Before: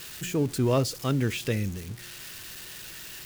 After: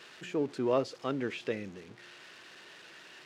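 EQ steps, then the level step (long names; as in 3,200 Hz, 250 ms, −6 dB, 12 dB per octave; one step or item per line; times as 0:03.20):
high-pass filter 350 Hz 12 dB per octave
head-to-tape spacing loss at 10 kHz 26 dB
0.0 dB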